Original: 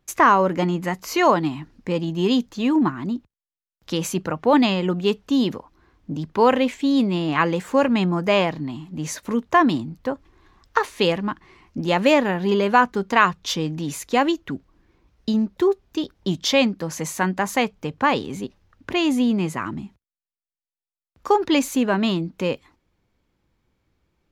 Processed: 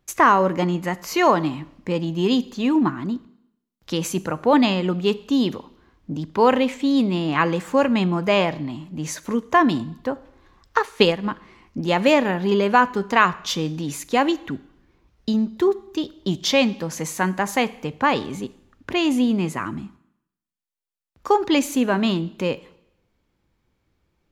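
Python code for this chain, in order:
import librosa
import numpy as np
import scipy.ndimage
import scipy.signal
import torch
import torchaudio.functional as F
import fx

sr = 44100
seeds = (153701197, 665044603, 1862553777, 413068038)

y = fx.rev_schroeder(x, sr, rt60_s=0.76, comb_ms=28, drr_db=17.5)
y = fx.transient(y, sr, attack_db=6, sustain_db=-5, at=(10.78, 11.27))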